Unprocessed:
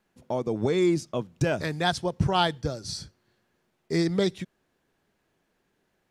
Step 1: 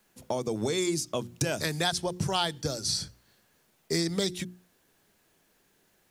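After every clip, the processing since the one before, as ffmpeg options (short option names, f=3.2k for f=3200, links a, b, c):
-filter_complex "[0:a]bandreject=f=60:t=h:w=6,bandreject=f=120:t=h:w=6,bandreject=f=180:t=h:w=6,bandreject=f=240:t=h:w=6,bandreject=f=300:t=h:w=6,bandreject=f=360:t=h:w=6,acrossover=split=98|3700[a][b][c];[a]acompressor=threshold=-52dB:ratio=4[d];[b]acompressor=threshold=-31dB:ratio=4[e];[c]acompressor=threshold=-42dB:ratio=4[f];[d][e][f]amix=inputs=3:normalize=0,crystalizer=i=2.5:c=0,volume=3dB"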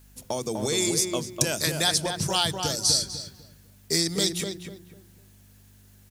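-filter_complex "[0:a]aeval=exprs='val(0)+0.00224*(sin(2*PI*50*n/s)+sin(2*PI*2*50*n/s)/2+sin(2*PI*3*50*n/s)/3+sin(2*PI*4*50*n/s)/4+sin(2*PI*5*50*n/s)/5)':c=same,highshelf=f=3.6k:g=11.5,asplit=2[a][b];[b]adelay=249,lowpass=f=1.7k:p=1,volume=-4dB,asplit=2[c][d];[d]adelay=249,lowpass=f=1.7k:p=1,volume=0.3,asplit=2[e][f];[f]adelay=249,lowpass=f=1.7k:p=1,volume=0.3,asplit=2[g][h];[h]adelay=249,lowpass=f=1.7k:p=1,volume=0.3[i];[c][e][g][i]amix=inputs=4:normalize=0[j];[a][j]amix=inputs=2:normalize=0"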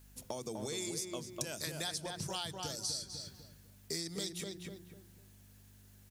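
-af "acompressor=threshold=-35dB:ratio=2.5,volume=-5.5dB"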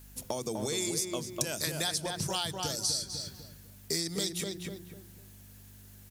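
-af "equalizer=f=15k:w=0.62:g=4,volume=6.5dB"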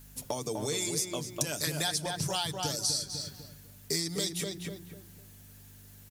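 -af "aecho=1:1:6.9:0.43"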